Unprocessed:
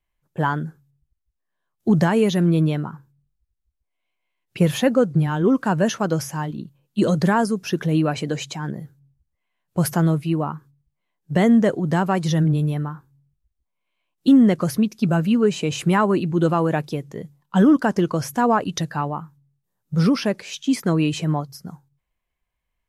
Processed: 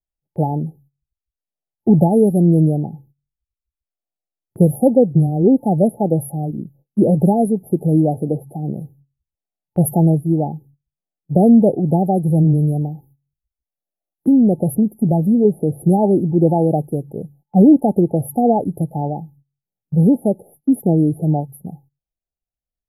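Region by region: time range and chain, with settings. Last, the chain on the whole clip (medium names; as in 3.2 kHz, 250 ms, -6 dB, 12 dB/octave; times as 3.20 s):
12.81–15.45 s: compression 3:1, threshold -15 dBFS + tape noise reduction on one side only encoder only
whole clip: FFT band-reject 870–9800 Hz; gate -52 dBFS, range -17 dB; trim +5 dB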